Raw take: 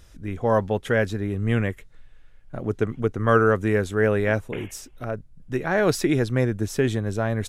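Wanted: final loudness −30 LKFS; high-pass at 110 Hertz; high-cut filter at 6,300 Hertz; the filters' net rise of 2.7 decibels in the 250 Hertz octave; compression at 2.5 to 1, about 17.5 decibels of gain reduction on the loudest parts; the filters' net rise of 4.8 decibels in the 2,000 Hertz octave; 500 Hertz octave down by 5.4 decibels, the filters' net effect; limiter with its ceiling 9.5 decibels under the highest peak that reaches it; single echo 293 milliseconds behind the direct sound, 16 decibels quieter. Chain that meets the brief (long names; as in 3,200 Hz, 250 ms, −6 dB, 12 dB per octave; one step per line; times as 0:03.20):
high-pass filter 110 Hz
low-pass filter 6,300 Hz
parametric band 250 Hz +6 dB
parametric band 500 Hz −9 dB
parametric band 2,000 Hz +7 dB
downward compressor 2.5 to 1, threshold −41 dBFS
brickwall limiter −30 dBFS
single-tap delay 293 ms −16 dB
level +12 dB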